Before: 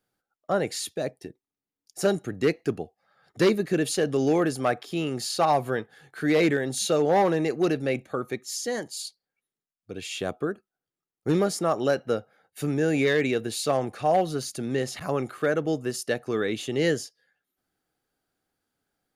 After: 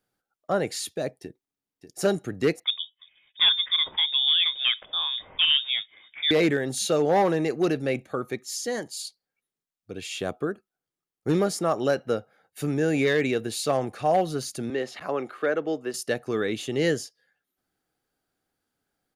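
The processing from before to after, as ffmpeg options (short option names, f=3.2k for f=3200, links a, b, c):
-filter_complex "[0:a]asplit=2[a][b];[b]afade=t=in:st=1.22:d=0.01,afade=t=out:st=2:d=0.01,aecho=0:1:590|1180|1770|2360|2950|3540|4130|4720|5310|5900|6490|7080:0.334965|0.267972|0.214378|0.171502|0.137202|0.109761|0.0878092|0.0702473|0.0561979|0.0449583|0.0359666|0.0287733[c];[a][c]amix=inputs=2:normalize=0,asettb=1/sr,asplit=3[d][e][f];[d]atrim=end=2.644[g];[e]atrim=start=2.64:end=6.31,asetpts=PTS-STARTPTS,afade=t=in:d=0.004:c=qsin,afade=t=out:st=3.666:d=0.004:c=qsin,lowpass=f=3.2k:t=q:w=0.5098,lowpass=f=3.2k:t=q:w=0.6013,lowpass=f=3.2k:t=q:w=0.9,lowpass=f=3.2k:t=q:w=2.563,afreqshift=-3800[h];[f]atrim=start=6.306[i];[g][h]acrossfade=d=0.004:c1=hsin:c2=qsin[j];[j][i]acrossfade=d=0.004:c1=qsin:c2=hsin,asettb=1/sr,asplit=3[k][l][m];[k]atrim=end=14.704[n];[l]atrim=start=14.7:end=15.94,asetpts=PTS-STARTPTS,afade=t=in:d=0.004:c=qsin,afade=t=out:st=1.236:d=0.004:c=qsin,acrossover=split=250 4400:gain=0.158 1 0.224[o][p][q];[o][p][q]amix=inputs=3:normalize=0[r];[m]atrim=start=15.936[s];[n][r]acrossfade=d=0.004:c1=hsin:c2=qsin[t];[t][s]acrossfade=d=0.004:c1=qsin:c2=hsin"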